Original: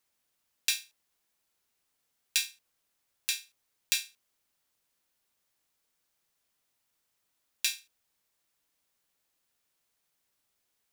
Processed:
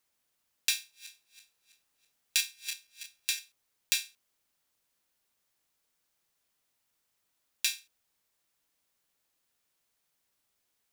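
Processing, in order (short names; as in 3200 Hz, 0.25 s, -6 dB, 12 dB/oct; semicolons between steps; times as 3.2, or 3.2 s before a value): 0.74–3.39 regenerating reverse delay 0.164 s, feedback 62%, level -8 dB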